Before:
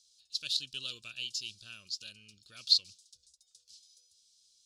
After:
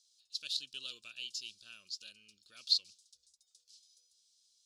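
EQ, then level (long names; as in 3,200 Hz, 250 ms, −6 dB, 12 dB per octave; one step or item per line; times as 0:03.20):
low-shelf EQ 81 Hz −5 dB
parametric band 110 Hz −11 dB 1.3 octaves
−4.5 dB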